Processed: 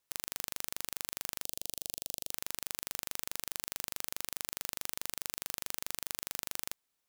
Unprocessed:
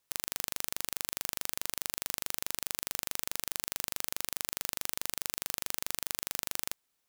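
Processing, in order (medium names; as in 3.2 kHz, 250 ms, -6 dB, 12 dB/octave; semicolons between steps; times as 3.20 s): 1.44–2.31 s: high-order bell 1.4 kHz -14 dB; trim -3.5 dB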